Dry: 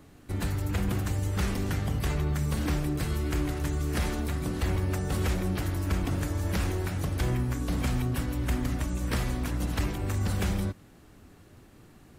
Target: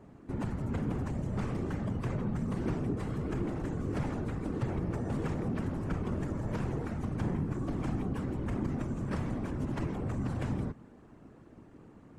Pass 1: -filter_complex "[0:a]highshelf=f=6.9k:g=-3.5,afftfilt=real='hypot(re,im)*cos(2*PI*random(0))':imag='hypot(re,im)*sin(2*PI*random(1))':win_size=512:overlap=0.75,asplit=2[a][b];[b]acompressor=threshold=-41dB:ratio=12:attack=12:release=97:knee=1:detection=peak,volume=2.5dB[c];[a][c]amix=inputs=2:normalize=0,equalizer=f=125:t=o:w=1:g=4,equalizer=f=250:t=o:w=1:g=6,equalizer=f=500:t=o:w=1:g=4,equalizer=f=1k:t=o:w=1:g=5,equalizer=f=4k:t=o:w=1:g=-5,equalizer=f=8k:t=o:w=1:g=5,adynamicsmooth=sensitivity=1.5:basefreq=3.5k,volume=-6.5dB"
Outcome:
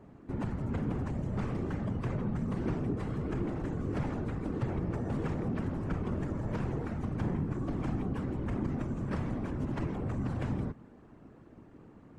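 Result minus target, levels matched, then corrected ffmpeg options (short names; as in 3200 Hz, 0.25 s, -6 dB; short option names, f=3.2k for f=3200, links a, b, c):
8000 Hz band -5.0 dB
-filter_complex "[0:a]highshelf=f=6.9k:g=6,afftfilt=real='hypot(re,im)*cos(2*PI*random(0))':imag='hypot(re,im)*sin(2*PI*random(1))':win_size=512:overlap=0.75,asplit=2[a][b];[b]acompressor=threshold=-41dB:ratio=12:attack=12:release=97:knee=1:detection=peak,volume=2.5dB[c];[a][c]amix=inputs=2:normalize=0,equalizer=f=125:t=o:w=1:g=4,equalizer=f=250:t=o:w=1:g=6,equalizer=f=500:t=o:w=1:g=4,equalizer=f=1k:t=o:w=1:g=5,equalizer=f=4k:t=o:w=1:g=-5,equalizer=f=8k:t=o:w=1:g=5,adynamicsmooth=sensitivity=1.5:basefreq=3.5k,volume=-6.5dB"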